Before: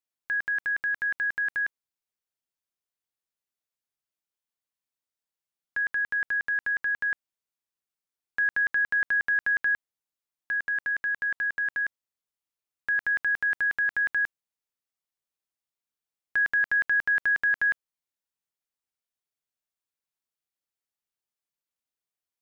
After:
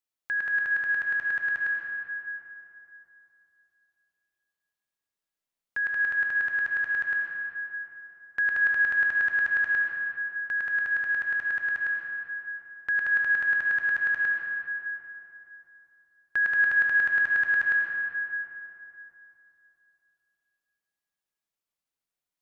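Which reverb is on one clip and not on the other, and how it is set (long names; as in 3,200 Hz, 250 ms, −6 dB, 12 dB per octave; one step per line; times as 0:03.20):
comb and all-pass reverb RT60 3.2 s, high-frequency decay 0.55×, pre-delay 45 ms, DRR 0 dB
level −1 dB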